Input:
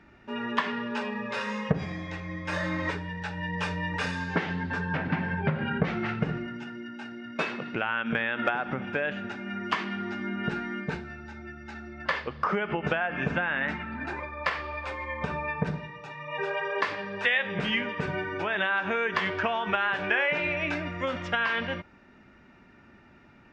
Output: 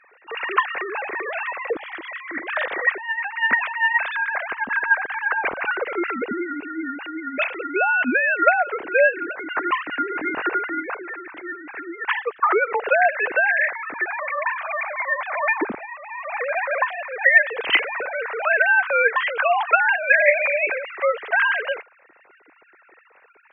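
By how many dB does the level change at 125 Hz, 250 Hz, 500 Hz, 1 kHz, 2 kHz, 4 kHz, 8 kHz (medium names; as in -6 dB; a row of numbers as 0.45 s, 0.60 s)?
under -20 dB, -1.0 dB, +8.5 dB, +8.5 dB, +10.5 dB, +3.0 dB, no reading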